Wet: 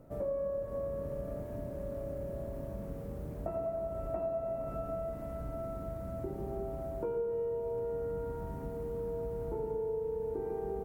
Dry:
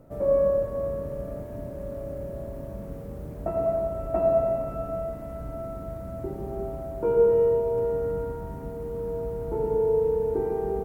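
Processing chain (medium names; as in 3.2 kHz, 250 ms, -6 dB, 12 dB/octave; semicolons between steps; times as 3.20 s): compression 5:1, threshold -30 dBFS, peak gain reduction 13 dB; trim -3.5 dB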